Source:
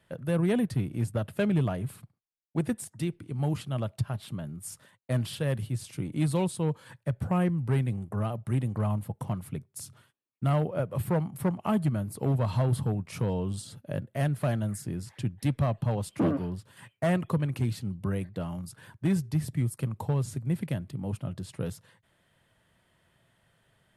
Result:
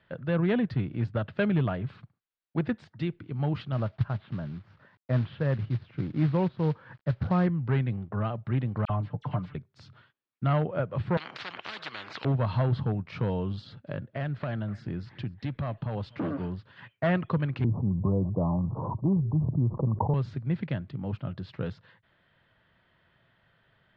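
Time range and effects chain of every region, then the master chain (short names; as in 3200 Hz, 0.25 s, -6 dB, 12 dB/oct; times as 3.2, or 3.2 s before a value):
3.72–7.47 LPF 1700 Hz + low shelf 160 Hz +3.5 dB + companded quantiser 6-bit
8.85–9.55 comb 6.8 ms, depth 59% + dispersion lows, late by 46 ms, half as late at 2000 Hz
11.17–12.25 HPF 550 Hz + spectral compressor 10:1
13.62–16.5 compressor 4:1, threshold -28 dBFS + echo 0.247 s -23 dB
17.64–20.14 steep low-pass 1100 Hz 96 dB/oct + fast leveller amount 70%
whole clip: steep low-pass 4400 Hz 36 dB/oct; bell 1500 Hz +5 dB 0.86 oct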